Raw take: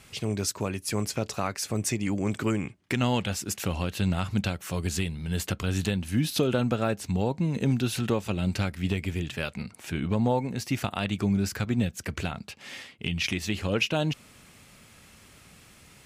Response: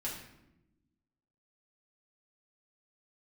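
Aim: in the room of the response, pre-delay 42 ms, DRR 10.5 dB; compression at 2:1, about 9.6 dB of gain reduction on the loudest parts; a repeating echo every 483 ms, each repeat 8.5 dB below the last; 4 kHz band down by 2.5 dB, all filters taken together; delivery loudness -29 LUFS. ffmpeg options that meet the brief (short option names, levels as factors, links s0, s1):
-filter_complex "[0:a]equalizer=f=4000:t=o:g=-3.5,acompressor=threshold=0.0112:ratio=2,aecho=1:1:483|966|1449|1932:0.376|0.143|0.0543|0.0206,asplit=2[s0][s1];[1:a]atrim=start_sample=2205,adelay=42[s2];[s1][s2]afir=irnorm=-1:irlink=0,volume=0.251[s3];[s0][s3]amix=inputs=2:normalize=0,volume=2.37"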